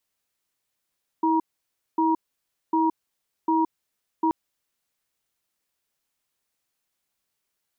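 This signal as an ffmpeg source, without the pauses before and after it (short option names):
-f lavfi -i "aevalsrc='0.0891*(sin(2*PI*323*t)+sin(2*PI*951*t))*clip(min(mod(t,0.75),0.17-mod(t,0.75))/0.005,0,1)':d=3.08:s=44100"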